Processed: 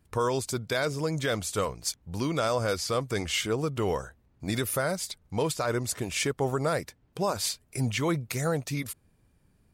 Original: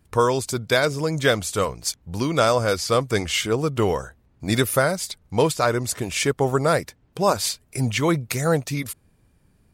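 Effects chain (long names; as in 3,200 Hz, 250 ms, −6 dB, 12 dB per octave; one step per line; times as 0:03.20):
brickwall limiter −12.5 dBFS, peak gain reduction 7.5 dB
level −5 dB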